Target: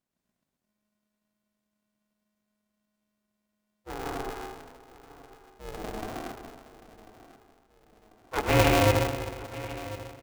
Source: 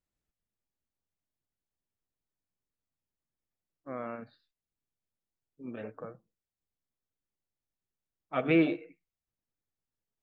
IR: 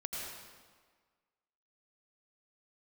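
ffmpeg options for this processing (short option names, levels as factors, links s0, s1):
-filter_complex "[0:a]asettb=1/sr,asplit=3[s0][s1][s2];[s0]atrim=end=3.944[s3];[s1]atrim=start=3.94:end=6.07,asetpts=PTS-STARTPTS,afade=t=in:d=0.004:c=qsin,afade=t=out:st=2.126:d=0.004:c=qsin,lowpass=1100[s4];[s2]atrim=start=6.066[s5];[s3][s4]acrossfade=d=0.004:c1=hsin:c2=qsin[s6];[s6][s5]acrossfade=d=0.004:c1=qsin:c2=hsin,aecho=1:1:1043|2086|3129|4172:0.15|0.0718|0.0345|0.0165[s7];[1:a]atrim=start_sample=2205,asetrate=36162,aresample=44100[s8];[s7][s8]afir=irnorm=-1:irlink=0,aeval=exprs='val(0)*sgn(sin(2*PI*210*n/s))':c=same,volume=1.5"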